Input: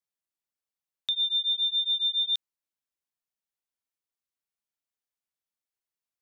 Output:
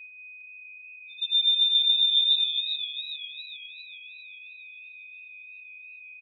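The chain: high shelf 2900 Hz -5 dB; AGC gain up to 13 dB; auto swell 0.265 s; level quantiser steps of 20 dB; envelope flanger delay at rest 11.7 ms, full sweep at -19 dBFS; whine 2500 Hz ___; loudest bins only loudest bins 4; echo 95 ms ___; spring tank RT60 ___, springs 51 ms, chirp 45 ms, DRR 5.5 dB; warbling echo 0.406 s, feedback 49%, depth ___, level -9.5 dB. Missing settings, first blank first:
-41 dBFS, -17 dB, 1.4 s, 69 cents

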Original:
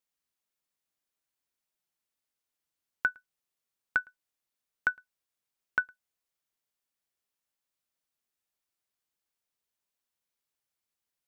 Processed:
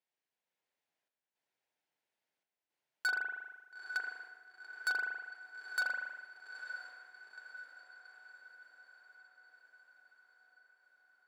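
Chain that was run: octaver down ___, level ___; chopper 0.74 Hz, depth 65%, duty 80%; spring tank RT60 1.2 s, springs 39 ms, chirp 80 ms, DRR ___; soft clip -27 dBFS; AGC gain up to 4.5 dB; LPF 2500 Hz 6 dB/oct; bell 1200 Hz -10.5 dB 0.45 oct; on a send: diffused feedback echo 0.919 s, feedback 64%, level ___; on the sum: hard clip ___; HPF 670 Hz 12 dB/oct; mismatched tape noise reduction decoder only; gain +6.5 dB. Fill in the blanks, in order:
1 oct, +3 dB, 9 dB, -11.5 dB, -35.5 dBFS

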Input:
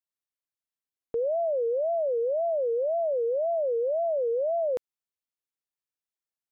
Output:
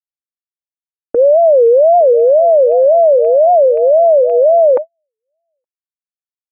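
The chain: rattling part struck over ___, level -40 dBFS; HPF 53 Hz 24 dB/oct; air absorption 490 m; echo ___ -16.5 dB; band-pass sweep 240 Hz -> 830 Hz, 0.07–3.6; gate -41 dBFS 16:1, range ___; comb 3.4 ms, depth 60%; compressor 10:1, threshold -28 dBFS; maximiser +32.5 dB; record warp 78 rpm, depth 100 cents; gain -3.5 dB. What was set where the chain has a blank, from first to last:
-47 dBFS, 0.869 s, -54 dB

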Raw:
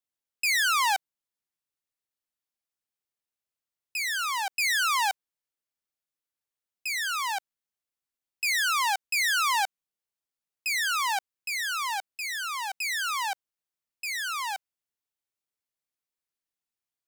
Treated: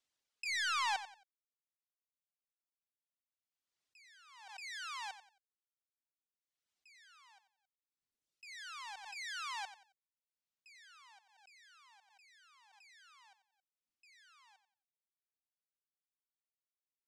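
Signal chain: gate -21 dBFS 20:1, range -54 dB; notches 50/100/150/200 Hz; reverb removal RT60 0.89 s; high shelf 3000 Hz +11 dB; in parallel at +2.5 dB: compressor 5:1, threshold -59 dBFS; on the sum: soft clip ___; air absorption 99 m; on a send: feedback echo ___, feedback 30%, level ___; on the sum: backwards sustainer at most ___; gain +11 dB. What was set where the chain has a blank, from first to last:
-33 dBFS, 90 ms, -12.5 dB, 40 dB/s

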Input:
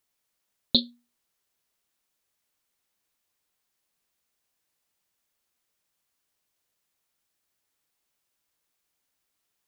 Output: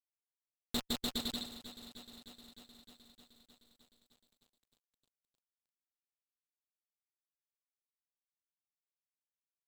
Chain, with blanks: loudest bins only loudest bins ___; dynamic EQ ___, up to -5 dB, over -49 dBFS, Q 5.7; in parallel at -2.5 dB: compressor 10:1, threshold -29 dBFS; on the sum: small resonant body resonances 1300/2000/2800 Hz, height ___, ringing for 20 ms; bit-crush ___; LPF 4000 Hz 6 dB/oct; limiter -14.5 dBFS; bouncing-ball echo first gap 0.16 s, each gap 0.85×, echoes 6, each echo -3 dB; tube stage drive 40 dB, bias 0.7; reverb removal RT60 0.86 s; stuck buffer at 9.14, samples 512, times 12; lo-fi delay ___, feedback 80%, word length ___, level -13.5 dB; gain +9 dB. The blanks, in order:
32, 170 Hz, 8 dB, 4-bit, 0.307 s, 12-bit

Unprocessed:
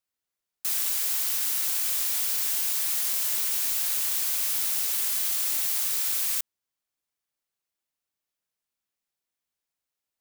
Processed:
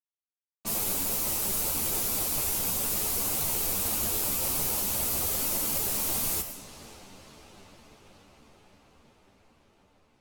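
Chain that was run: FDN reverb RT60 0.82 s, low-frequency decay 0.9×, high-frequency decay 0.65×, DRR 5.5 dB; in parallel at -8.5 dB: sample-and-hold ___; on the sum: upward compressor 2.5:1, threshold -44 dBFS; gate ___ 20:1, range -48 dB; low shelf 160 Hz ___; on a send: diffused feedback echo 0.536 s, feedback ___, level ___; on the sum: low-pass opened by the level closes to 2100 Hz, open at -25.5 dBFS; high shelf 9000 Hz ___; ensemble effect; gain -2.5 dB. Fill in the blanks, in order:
24×, -53 dBFS, +5.5 dB, 74%, -14 dB, +7.5 dB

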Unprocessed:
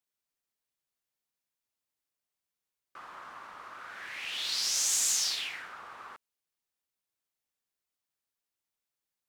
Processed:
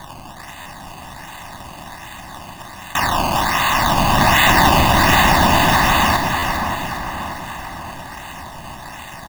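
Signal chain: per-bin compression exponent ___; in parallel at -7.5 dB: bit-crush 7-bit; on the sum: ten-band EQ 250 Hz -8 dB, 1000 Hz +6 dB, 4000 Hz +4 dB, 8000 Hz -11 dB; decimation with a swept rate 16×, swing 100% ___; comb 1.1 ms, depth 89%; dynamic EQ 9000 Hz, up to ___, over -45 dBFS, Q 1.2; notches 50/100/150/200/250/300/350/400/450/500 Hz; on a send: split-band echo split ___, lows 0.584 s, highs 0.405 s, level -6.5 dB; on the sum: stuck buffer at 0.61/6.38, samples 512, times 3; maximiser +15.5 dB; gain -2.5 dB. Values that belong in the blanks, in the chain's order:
0.4, 1.3 Hz, -6 dB, 2000 Hz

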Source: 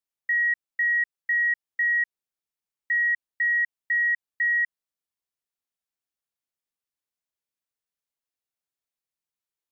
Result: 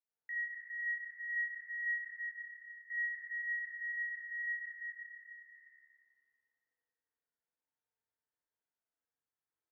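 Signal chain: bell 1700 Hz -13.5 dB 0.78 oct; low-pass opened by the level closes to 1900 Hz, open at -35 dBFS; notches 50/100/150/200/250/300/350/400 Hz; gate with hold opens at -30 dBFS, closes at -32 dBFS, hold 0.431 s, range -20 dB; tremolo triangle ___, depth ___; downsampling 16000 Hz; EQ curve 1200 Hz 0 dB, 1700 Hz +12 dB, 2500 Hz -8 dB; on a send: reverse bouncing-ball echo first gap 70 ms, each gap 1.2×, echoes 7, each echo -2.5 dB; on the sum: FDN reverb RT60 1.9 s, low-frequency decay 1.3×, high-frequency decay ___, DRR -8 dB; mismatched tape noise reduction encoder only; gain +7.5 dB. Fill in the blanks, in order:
1.7 Hz, 35%, 0.95×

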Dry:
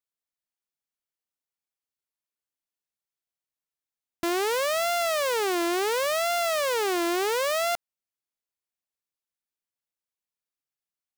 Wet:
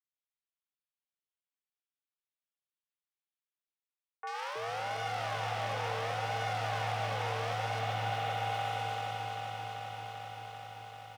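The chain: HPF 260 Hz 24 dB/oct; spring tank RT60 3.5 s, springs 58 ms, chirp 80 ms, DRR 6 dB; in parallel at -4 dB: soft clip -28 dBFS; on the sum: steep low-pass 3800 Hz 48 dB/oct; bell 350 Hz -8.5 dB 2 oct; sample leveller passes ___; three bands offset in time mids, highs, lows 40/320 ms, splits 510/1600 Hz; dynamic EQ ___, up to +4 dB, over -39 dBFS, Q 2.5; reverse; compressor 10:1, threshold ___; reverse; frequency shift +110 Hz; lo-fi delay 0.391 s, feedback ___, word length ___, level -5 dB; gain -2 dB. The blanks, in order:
3, 650 Hz, -33 dBFS, 80%, 11-bit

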